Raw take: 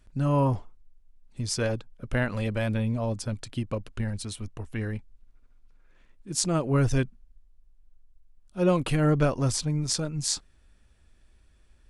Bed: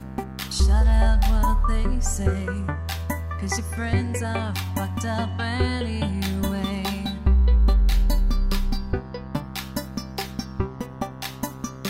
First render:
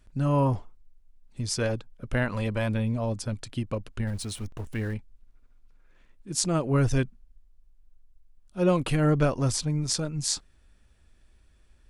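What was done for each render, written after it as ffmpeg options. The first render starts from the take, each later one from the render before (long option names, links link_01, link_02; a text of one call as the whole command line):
ffmpeg -i in.wav -filter_complex "[0:a]asettb=1/sr,asplit=3[link_01][link_02][link_03];[link_01]atrim=end=2.254[link_04];[link_02]atrim=start=2.25:end=2.75,asetpts=PTS-STARTPTS,afade=type=in:duration=0.004:curve=qsin,afade=type=out:start_time=0.496:duration=0.004:curve=qsin,equalizer=frequency=1000:width=4.7:gain=6.5[link_05];[link_03]atrim=start=2.746[link_06];[link_04][link_05]acrossfade=duration=0.004:curve1=hsin:curve2=qsin[link_07];[link_07][link_06]acrossfade=duration=0.004:curve1=qsin:curve2=hsin,asettb=1/sr,asplit=3[link_08][link_09][link_10];[link_08]atrim=end=4.074[link_11];[link_09]atrim=start=4.07:end=4.94,asetpts=PTS-STARTPTS,afade=type=in:duration=0.004:curve=qsin,afade=type=out:start_time=0.866:duration=0.004:curve=qsin,aeval=exprs='val(0)+0.5*0.00668*sgn(val(0))':channel_layout=same[link_12];[link_10]atrim=start=4.936[link_13];[link_11][link_12]acrossfade=duration=0.004:curve1=hsin:curve2=qsin[link_14];[link_14][link_13]acrossfade=duration=0.004:curve1=qsin:curve2=hsin" out.wav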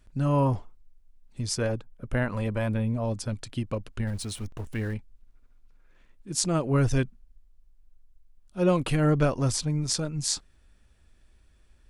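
ffmpeg -i in.wav -filter_complex "[0:a]asettb=1/sr,asplit=3[link_01][link_02][link_03];[link_01]atrim=end=1.554[link_04];[link_02]atrim=start=1.55:end=3.05,asetpts=PTS-STARTPTS,afade=type=in:duration=0.004:curve=qsin,afade=type=out:start_time=1.496:duration=0.004:curve=qsin,equalizer=frequency=4300:width=0.7:gain=-6.5[link_05];[link_03]atrim=start=3.046[link_06];[link_04][link_05]acrossfade=duration=0.004:curve1=hsin:curve2=qsin[link_07];[link_07][link_06]acrossfade=duration=0.004:curve1=qsin:curve2=hsin" out.wav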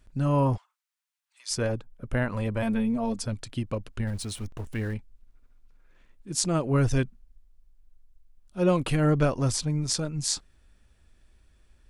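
ffmpeg -i in.wav -filter_complex "[0:a]asplit=3[link_01][link_02][link_03];[link_01]afade=type=out:start_time=0.56:duration=0.02[link_04];[link_02]highpass=frequency=1100:width=0.5412,highpass=frequency=1100:width=1.3066,afade=type=in:start_time=0.56:duration=0.02,afade=type=out:start_time=1.5:duration=0.02[link_05];[link_03]afade=type=in:start_time=1.5:duration=0.02[link_06];[link_04][link_05][link_06]amix=inputs=3:normalize=0,asettb=1/sr,asplit=3[link_07][link_08][link_09];[link_07]atrim=end=2.624[link_10];[link_08]atrim=start=2.62:end=3.26,asetpts=PTS-STARTPTS,afade=type=in:duration=0.004:curve=qsin,afade=type=out:start_time=0.636:duration=0.004:curve=qsin,aecho=1:1:4.4:0.82,atrim=end_sample=28224[link_11];[link_09]atrim=start=3.256[link_12];[link_10][link_11]acrossfade=duration=0.004:curve1=hsin:curve2=qsin[link_13];[link_13][link_12]acrossfade=duration=0.004:curve1=qsin:curve2=hsin" out.wav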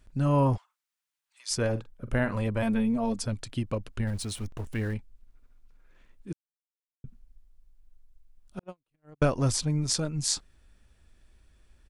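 ffmpeg -i in.wav -filter_complex "[0:a]asplit=3[link_01][link_02][link_03];[link_01]afade=type=out:start_time=1.74:duration=0.02[link_04];[link_02]asplit=2[link_05][link_06];[link_06]adelay=45,volume=-11.5dB[link_07];[link_05][link_07]amix=inputs=2:normalize=0,afade=type=in:start_time=1.74:duration=0.02,afade=type=out:start_time=2.37:duration=0.02[link_08];[link_03]afade=type=in:start_time=2.37:duration=0.02[link_09];[link_04][link_08][link_09]amix=inputs=3:normalize=0,asettb=1/sr,asplit=3[link_10][link_11][link_12];[link_10]atrim=end=8.594[link_13];[link_11]atrim=start=8.59:end=9.22,asetpts=PTS-STARTPTS,afade=type=in:duration=0.004:curve=qsin,afade=type=out:start_time=0.626:duration=0.004:curve=qsin,agate=range=-56dB:threshold=-17dB:ratio=16:release=100:detection=peak[link_14];[link_12]atrim=start=9.216[link_15];[link_13][link_14]acrossfade=duration=0.004:curve1=hsin:curve2=qsin[link_16];[link_16][link_15]acrossfade=duration=0.004:curve1=qsin:curve2=hsin,asplit=3[link_17][link_18][link_19];[link_17]atrim=end=6.33,asetpts=PTS-STARTPTS,afade=type=out:start_time=6.326:duration=0.004:curve=hsin[link_20];[link_18]atrim=start=6.33:end=7.04,asetpts=PTS-STARTPTS,volume=0[link_21];[link_19]atrim=start=7.04,asetpts=PTS-STARTPTS,afade=type=in:duration=0.004:curve=hsin[link_22];[link_20][link_21][link_22]concat=n=3:v=0:a=1" out.wav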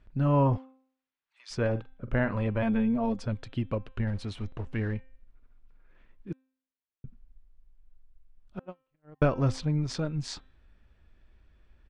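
ffmpeg -i in.wav -af "lowpass=2900,bandreject=frequency=262:width_type=h:width=4,bandreject=frequency=524:width_type=h:width=4,bandreject=frequency=786:width_type=h:width=4,bandreject=frequency=1048:width_type=h:width=4,bandreject=frequency=1310:width_type=h:width=4,bandreject=frequency=1572:width_type=h:width=4,bandreject=frequency=1834:width_type=h:width=4,bandreject=frequency=2096:width_type=h:width=4,bandreject=frequency=2358:width_type=h:width=4,bandreject=frequency=2620:width_type=h:width=4,bandreject=frequency=2882:width_type=h:width=4,bandreject=frequency=3144:width_type=h:width=4,bandreject=frequency=3406:width_type=h:width=4,bandreject=frequency=3668:width_type=h:width=4,bandreject=frequency=3930:width_type=h:width=4" out.wav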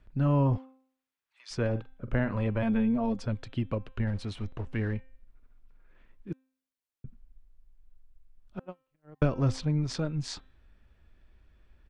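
ffmpeg -i in.wav -filter_complex "[0:a]acrossover=split=390|3000[link_01][link_02][link_03];[link_02]acompressor=threshold=-32dB:ratio=3[link_04];[link_01][link_04][link_03]amix=inputs=3:normalize=0" out.wav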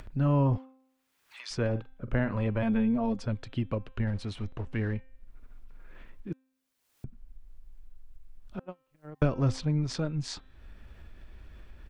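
ffmpeg -i in.wav -af "acompressor=mode=upward:threshold=-35dB:ratio=2.5" out.wav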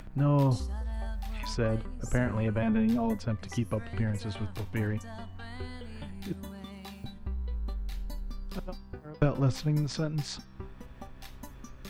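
ffmpeg -i in.wav -i bed.wav -filter_complex "[1:a]volume=-17.5dB[link_01];[0:a][link_01]amix=inputs=2:normalize=0" out.wav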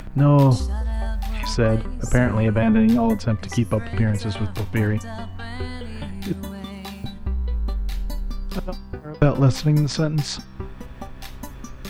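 ffmpeg -i in.wav -af "volume=10dB,alimiter=limit=-3dB:level=0:latency=1" out.wav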